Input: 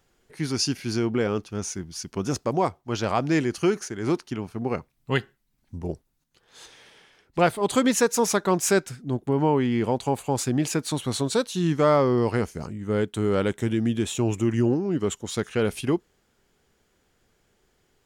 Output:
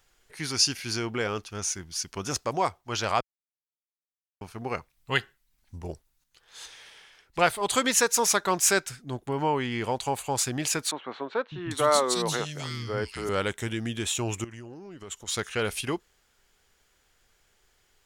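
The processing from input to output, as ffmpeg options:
-filter_complex "[0:a]asettb=1/sr,asplit=3[a][b][c];[a]atrim=end=10.914[d];[b]atrim=start=10.91:end=13.29,asetpts=PTS-STARTPTS,afade=t=in:d=0.004:c=qsin,afade=t=out:st=2.376:d=0.004:c=qsin,acrossover=split=220|2300[e][f][g];[e]adelay=600[h];[g]adelay=800[i];[h][f][i]amix=inputs=3:normalize=0,atrim=end_sample=104958[j];[c]atrim=start=13.286[k];[d][j]acrossfade=d=0.004:c1=hsin:c2=qsin[l];[l][k]acrossfade=d=0.004:c1=qsin:c2=hsin,asettb=1/sr,asplit=3[m][n][o];[m]atrim=end=14.444[p];[n]atrim=start=14.44:end=15.28,asetpts=PTS-STARTPTS,afade=t=in:d=0.004:c=qsin,afade=t=out:st=0.836:d=0.004:c=qsin,acompressor=threshold=-35dB:ratio=4:attack=3.2:release=140:knee=1:detection=peak[q];[o]atrim=start=15.276[r];[p][q]acrossfade=d=0.004:c1=hsin:c2=qsin[s];[s][r]acrossfade=d=0.004:c1=qsin:c2=hsin,asplit=3[t][u][v];[t]atrim=end=3.21,asetpts=PTS-STARTPTS,afade=t=out:st=3.206:d=0.004:c=hsin[w];[u]atrim=start=3.21:end=4.41,asetpts=PTS-STARTPTS,volume=0[x];[v]atrim=start=4.41,asetpts=PTS-STARTPTS,afade=t=in:d=0.004:c=hsin[y];[w][x][y]concat=n=3:v=0:a=1,equalizer=f=220:w=0.39:g=-13.5,volume=4dB"

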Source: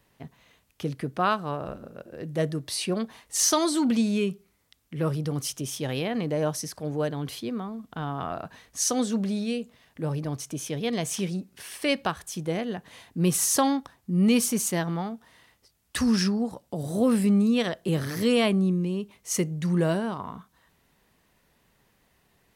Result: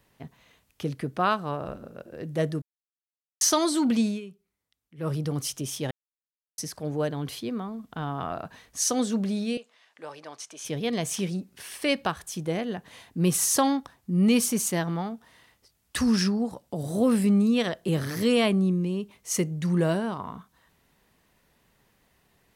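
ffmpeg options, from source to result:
-filter_complex "[0:a]asettb=1/sr,asplit=3[a][b][c];[a]atrim=end=9.574[d];[b]atrim=start=9.57:end=10.65,asetpts=PTS-STARTPTS,afade=t=in:d=0.004:c=qsin,afade=t=out:st=1.076:d=0.004:c=qsin,highpass=730,lowpass=7.1k[e];[c]atrim=start=10.646[f];[d][e]acrossfade=d=0.004:c1=hsin:c2=qsin[g];[g][f]acrossfade=d=0.004:c1=qsin:c2=hsin,asplit=7[h][i][j][k][l][m][n];[h]atrim=end=2.62,asetpts=PTS-STARTPTS,afade=t=out:st=2.616:d=0.004:c=hsin[o];[i]atrim=start=2.62:end=3.41,asetpts=PTS-STARTPTS,volume=0[p];[j]atrim=start=3.41:end=4.21,asetpts=PTS-STARTPTS,afade=t=in:d=0.004:c=hsin,afade=t=out:st=0.65:d=0.15:silence=0.177828[q];[k]atrim=start=4.21:end=4.97,asetpts=PTS-STARTPTS,volume=-15dB[r];[l]atrim=start=4.97:end=5.91,asetpts=PTS-STARTPTS,afade=t=in:d=0.15:silence=0.177828,afade=t=out:st=0.936:d=0.004:c=hsin[s];[m]atrim=start=5.91:end=6.58,asetpts=PTS-STARTPTS,volume=0[t];[n]atrim=start=6.58,asetpts=PTS-STARTPTS,afade=t=in:d=0.004:c=hsin[u];[o][p][q][r][s][t][u]concat=n=7:v=0:a=1"

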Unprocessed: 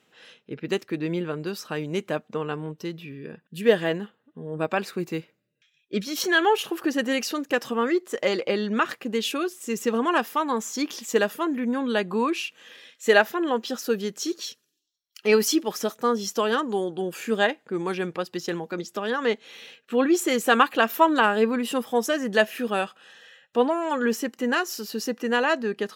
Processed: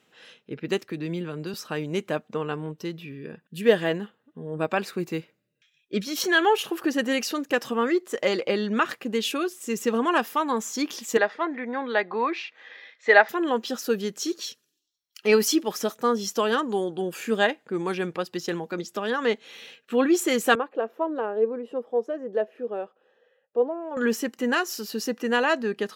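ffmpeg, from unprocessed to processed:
-filter_complex "[0:a]asettb=1/sr,asplit=3[a][b][c];[a]atrim=end=0.914[d];[b]atrim=start=0.91:end=1.54,asetpts=PTS-STARTPTS,afade=t=in:d=0.004:c=qsin,afade=t=out:st=0.626:d=0.004:c=qsin,acrossover=split=240|3000[e][f][g];[f]acompressor=threshold=-32dB:ratio=6:attack=3.2:release=140:knee=2.83:detection=peak[h];[e][h][g]amix=inputs=3:normalize=0[i];[c]atrim=start=1.536[j];[d][i]acrossfade=d=0.004:c1=hsin:c2=qsin[k];[k][j]acrossfade=d=0.004:c1=qsin:c2=hsin,asettb=1/sr,asplit=3[l][m][n];[l]atrim=end=11.174[o];[m]atrim=start=11.17:end=13.29,asetpts=PTS-STARTPTS,afade=t=in:d=0.004:c=qsin,afade=t=out:st=2.116:d=0.004:c=qsin,highpass=390,equalizer=f=770:t=q:w=4:g=6,equalizer=f=2k:t=q:w=4:g=9,equalizer=f=2.9k:t=q:w=4:g=-9,lowpass=f=4.4k:w=0.5412,lowpass=f=4.4k:w=1.3066[p];[n]atrim=start=13.286[q];[o][p]acrossfade=d=0.004:c1=hsin:c2=qsin[r];[r][q]acrossfade=d=0.004:c1=qsin:c2=hsin,asettb=1/sr,asplit=3[s][t][u];[s]atrim=end=20.554[v];[t]atrim=start=20.55:end=23.97,asetpts=PTS-STARTPTS,afade=t=in:d=0.004:c=qsin,afade=t=out:st=3.416:d=0.004:c=qsin,bandpass=f=470:t=q:w=2.5[w];[u]atrim=start=23.966[x];[v][w]acrossfade=d=0.004:c1=hsin:c2=qsin[y];[y][x]acrossfade=d=0.004:c1=qsin:c2=hsin"

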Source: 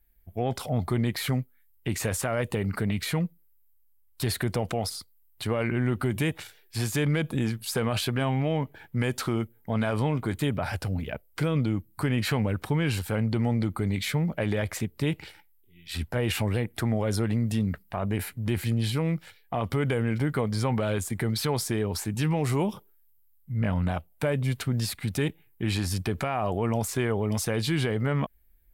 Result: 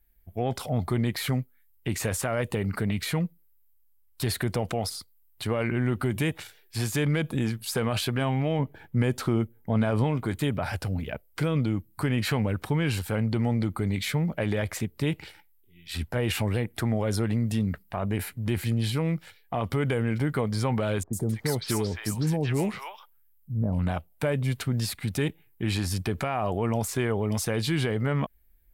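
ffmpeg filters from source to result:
-filter_complex "[0:a]asettb=1/sr,asplit=3[a][b][c];[a]atrim=end=8.594[d];[b]atrim=start=8.59:end=10.04,asetpts=PTS-STARTPTS,afade=t=in:d=0.004:c=qsin,afade=t=out:st=1.446:d=0.004:c=qsin,tiltshelf=f=860:g=3.5[e];[c]atrim=start=10.036[f];[d][e]acrossfade=d=0.004:c1=hsin:c2=qsin[g];[g][f]acrossfade=d=0.004:c1=qsin:c2=hsin,asettb=1/sr,asplit=3[h][i][j];[h]atrim=end=21.034[k];[i]atrim=start=21.03:end=23.79,asetpts=PTS-STARTPTS,afade=t=in:d=0.004:c=qsin,afade=t=out:st=2.756:d=0.004:c=qsin,acrossover=split=830|4600[l][m][n];[n]adelay=100[o];[m]adelay=260[p];[l][p][o]amix=inputs=3:normalize=0,atrim=end_sample=121716[q];[j]atrim=start=23.786[r];[k][q]acrossfade=d=0.004:c1=hsin:c2=qsin[s];[s][r]acrossfade=d=0.004:c1=qsin:c2=hsin"

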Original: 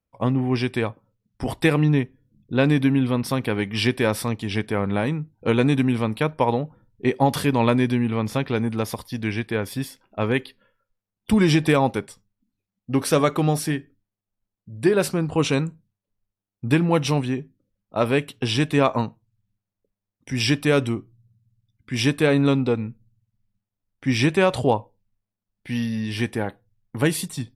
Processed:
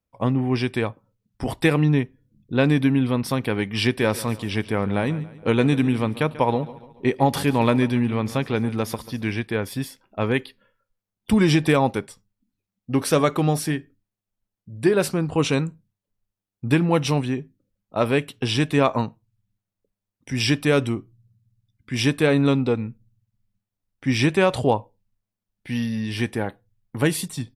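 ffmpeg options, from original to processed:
-filter_complex "[0:a]asplit=3[a][b][c];[a]afade=t=out:st=3.97:d=0.02[d];[b]aecho=1:1:140|280|420|560:0.141|0.0636|0.0286|0.0129,afade=t=in:st=3.97:d=0.02,afade=t=out:st=9.38:d=0.02[e];[c]afade=t=in:st=9.38:d=0.02[f];[d][e][f]amix=inputs=3:normalize=0"

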